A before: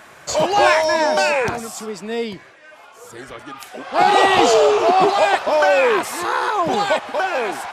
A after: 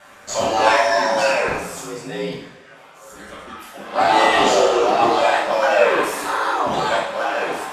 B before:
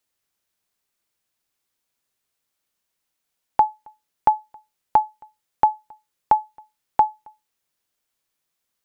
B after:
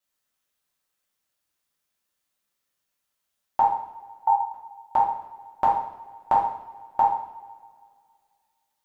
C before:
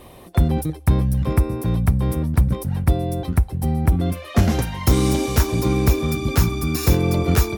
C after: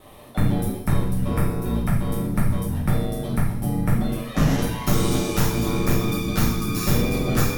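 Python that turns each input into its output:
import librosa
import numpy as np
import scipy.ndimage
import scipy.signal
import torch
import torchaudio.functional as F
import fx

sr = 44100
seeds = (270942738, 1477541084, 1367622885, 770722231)

y = x * np.sin(2.0 * np.pi * 55.0 * np.arange(len(x)) / sr)
y = fx.rev_double_slope(y, sr, seeds[0], early_s=0.65, late_s=2.2, knee_db=-19, drr_db=-6.5)
y = F.gain(torch.from_numpy(y), -5.0).numpy()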